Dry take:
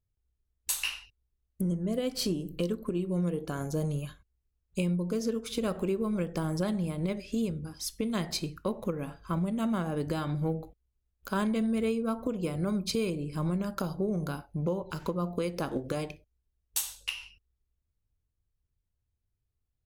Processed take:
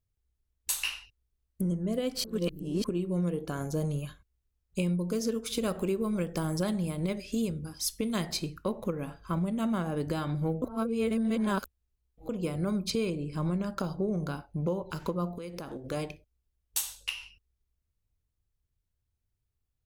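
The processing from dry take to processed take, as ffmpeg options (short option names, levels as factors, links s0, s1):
-filter_complex "[0:a]asettb=1/sr,asplit=3[s0][s1][s2];[s0]atrim=end=4.864[s3];[s1]atrim=start=4.86:end=8.31,asetpts=PTS-STARTPTS,afade=t=in:d=0.004:c=qsin,afade=t=out:st=3.446:d=0.004:c=qsin,highshelf=f=4500:g=6[s4];[s2]atrim=start=8.306[s5];[s3][s4]acrossfade=d=0.004:c1=hsin:c2=qsin[s6];[s6][s5]acrossfade=d=0.004:c1=qsin:c2=hsin,asettb=1/sr,asplit=3[s7][s8][s9];[s7]atrim=end=12.904[s10];[s8]atrim=start=12.9:end=14.54,asetpts=PTS-STARTPTS,afade=t=in:d=0.004:c=qsin,afade=t=out:st=1.636:d=0.004:c=qsin,equalizer=f=13000:w=1.1:g=-9.5[s11];[s9]atrim=start=14.536[s12];[s10][s11]acrossfade=d=0.004:c1=hsin:c2=qsin[s13];[s13][s12]acrossfade=d=0.004:c1=qsin:c2=hsin,asettb=1/sr,asplit=3[s14][s15][s16];[s14]atrim=end=15.364[s17];[s15]atrim=start=15.36:end=15.92,asetpts=PTS-STARTPTS,afade=t=in:d=0.004:c=qsin,afade=t=out:st=0.556:d=0.004:c=qsin,acompressor=threshold=0.0158:ratio=6:attack=3.2:release=140:knee=1:detection=peak[s18];[s16]atrim=start=15.916[s19];[s17][s18]acrossfade=d=0.004:c1=hsin:c2=qsin[s20];[s20][s19]acrossfade=d=0.004:c1=qsin:c2=hsin,asplit=5[s21][s22][s23][s24][s25];[s21]atrim=end=2.242[s26];[s22]atrim=start=2.238:end=2.842,asetpts=PTS-STARTPTS,areverse[s27];[s23]atrim=start=2.838:end=10.622[s28];[s24]atrim=start=10.618:end=12.292,asetpts=PTS-STARTPTS,areverse[s29];[s25]atrim=start=12.288[s30];[s26][s27]acrossfade=d=0.004:c1=hsin:c2=hsin[s31];[s31][s28]acrossfade=d=0.004:c1=hsin:c2=hsin[s32];[s32][s29]acrossfade=d=0.004:c1=hsin:c2=hsin[s33];[s33][s30]acrossfade=d=0.004:c1=hsin:c2=hsin"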